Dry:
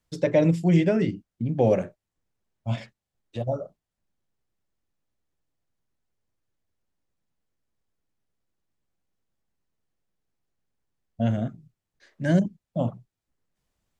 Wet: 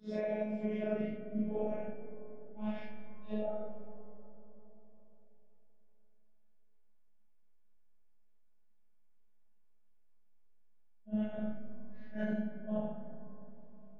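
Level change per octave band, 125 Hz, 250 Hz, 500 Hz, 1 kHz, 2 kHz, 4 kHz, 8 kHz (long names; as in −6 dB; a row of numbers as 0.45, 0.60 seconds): −21.5 dB, −11.5 dB, −12.0 dB, −12.0 dB, −12.5 dB, below −15 dB, can't be measured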